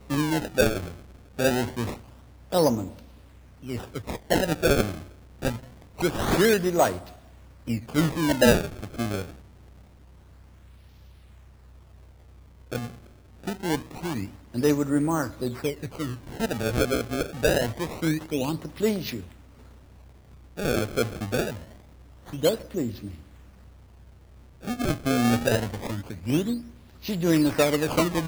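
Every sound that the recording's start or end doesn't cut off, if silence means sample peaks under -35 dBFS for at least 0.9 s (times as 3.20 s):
12.72–19.24 s
20.58–23.14 s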